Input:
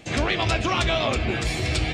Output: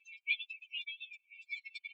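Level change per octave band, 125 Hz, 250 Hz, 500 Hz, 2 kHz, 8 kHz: under -40 dB, under -40 dB, under -40 dB, -12.5 dB, under -35 dB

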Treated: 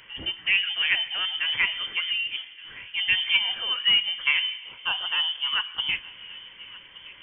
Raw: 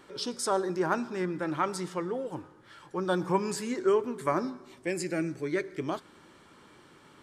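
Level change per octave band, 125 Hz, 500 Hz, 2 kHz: under -10 dB, -22.5 dB, +14.5 dB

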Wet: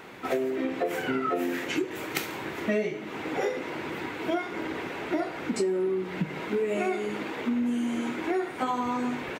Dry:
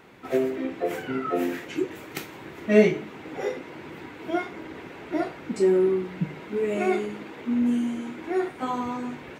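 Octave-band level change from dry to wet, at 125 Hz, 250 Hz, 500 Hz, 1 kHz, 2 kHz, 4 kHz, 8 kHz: -4.0 dB, -3.0 dB, -4.0 dB, +1.0 dB, +1.5 dB, +3.5 dB, n/a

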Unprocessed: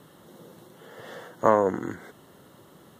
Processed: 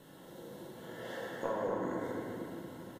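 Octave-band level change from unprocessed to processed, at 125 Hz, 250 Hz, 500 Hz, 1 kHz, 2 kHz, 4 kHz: -7.0 dB, -7.0 dB, -11.0 dB, -13.5 dB, -6.5 dB, n/a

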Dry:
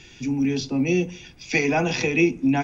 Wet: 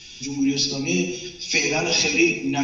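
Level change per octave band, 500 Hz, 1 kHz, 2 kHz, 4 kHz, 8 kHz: -1.5 dB, -2.5 dB, +3.0 dB, +11.0 dB, n/a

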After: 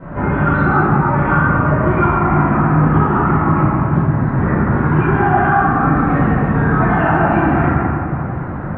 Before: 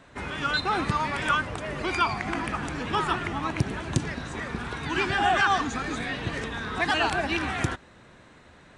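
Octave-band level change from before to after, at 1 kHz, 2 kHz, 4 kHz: +12.0 dB, +7.5 dB, under -15 dB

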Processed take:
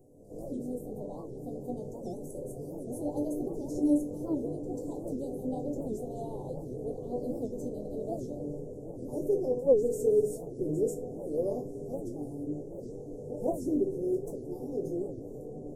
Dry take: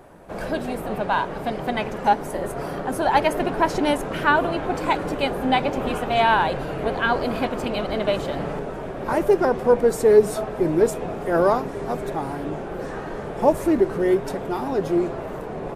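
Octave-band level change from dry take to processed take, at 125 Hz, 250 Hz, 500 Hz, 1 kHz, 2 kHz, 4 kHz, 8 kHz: -9.5 dB, -8.0 dB, -10.5 dB, -25.5 dB, under -40 dB, under -30 dB, -11.0 dB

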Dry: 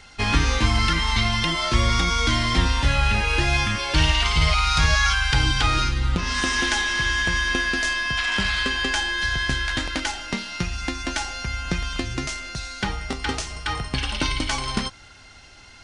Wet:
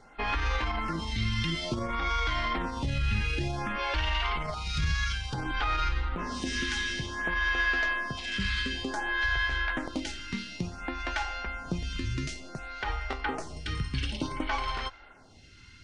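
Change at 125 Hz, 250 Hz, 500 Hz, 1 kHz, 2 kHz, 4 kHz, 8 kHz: -9.0, -7.0, -6.5, -6.5, -7.5, -11.5, -14.5 dB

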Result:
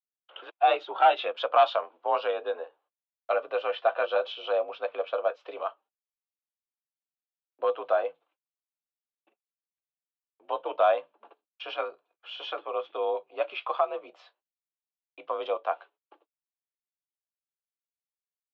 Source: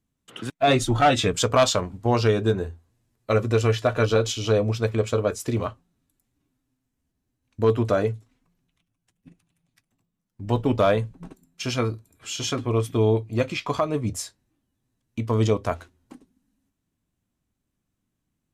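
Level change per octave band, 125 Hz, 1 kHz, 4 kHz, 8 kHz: under -40 dB, +0.5 dB, -8.0 dB, under -40 dB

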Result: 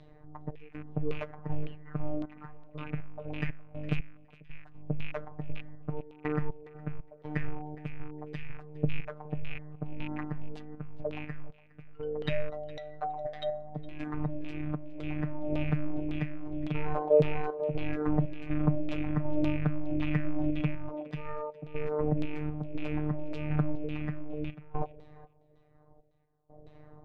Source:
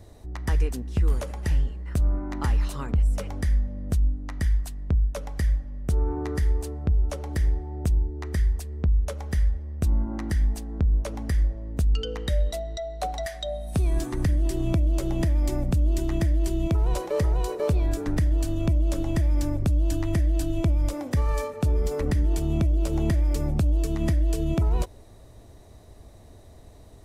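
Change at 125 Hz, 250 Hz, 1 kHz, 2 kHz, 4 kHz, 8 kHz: -10.0 dB, -3.5 dB, -3.0 dB, -2.5 dB, -10.0 dB, under -30 dB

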